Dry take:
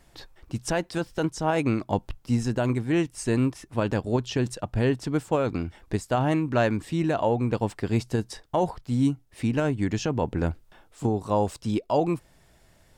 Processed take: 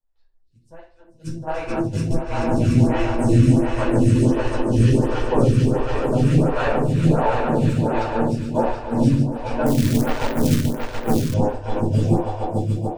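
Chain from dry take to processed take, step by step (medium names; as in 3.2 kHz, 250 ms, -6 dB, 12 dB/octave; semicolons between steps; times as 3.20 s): bass shelf 90 Hz +10 dB; on a send: echo with a slow build-up 145 ms, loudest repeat 5, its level -6 dB; on the sum: gate -19 dBFS, range -34 dB; in parallel at -7 dB: saturation -20.5 dBFS, distortion -9 dB; on the sum: simulated room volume 340 m³, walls furnished, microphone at 4.9 m; 9.66–11.34 s: companded quantiser 4-bit; lamp-driven phase shifter 1.4 Hz; trim -7 dB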